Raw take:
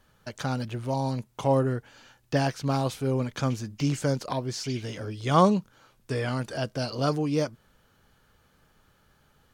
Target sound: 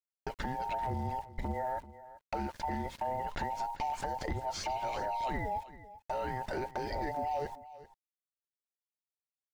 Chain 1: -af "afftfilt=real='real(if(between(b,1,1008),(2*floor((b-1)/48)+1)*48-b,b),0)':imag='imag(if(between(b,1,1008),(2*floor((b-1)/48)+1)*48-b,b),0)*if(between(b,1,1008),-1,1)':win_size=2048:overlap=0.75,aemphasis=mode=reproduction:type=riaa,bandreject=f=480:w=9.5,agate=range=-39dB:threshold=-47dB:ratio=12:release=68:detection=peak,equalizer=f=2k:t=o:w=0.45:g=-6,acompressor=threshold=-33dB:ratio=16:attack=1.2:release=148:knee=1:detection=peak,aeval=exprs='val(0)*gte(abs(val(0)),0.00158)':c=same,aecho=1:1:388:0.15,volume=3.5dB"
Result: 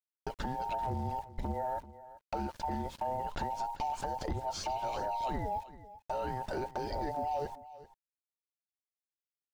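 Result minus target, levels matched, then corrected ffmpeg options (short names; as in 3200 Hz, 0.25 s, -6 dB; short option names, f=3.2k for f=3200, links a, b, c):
2000 Hz band -4.5 dB
-af "afftfilt=real='real(if(between(b,1,1008),(2*floor((b-1)/48)+1)*48-b,b),0)':imag='imag(if(between(b,1,1008),(2*floor((b-1)/48)+1)*48-b,b),0)*if(between(b,1,1008),-1,1)':win_size=2048:overlap=0.75,aemphasis=mode=reproduction:type=riaa,bandreject=f=480:w=9.5,agate=range=-39dB:threshold=-47dB:ratio=12:release=68:detection=peak,equalizer=f=2k:t=o:w=0.45:g=4,acompressor=threshold=-33dB:ratio=16:attack=1.2:release=148:knee=1:detection=peak,aeval=exprs='val(0)*gte(abs(val(0)),0.00158)':c=same,aecho=1:1:388:0.15,volume=3.5dB"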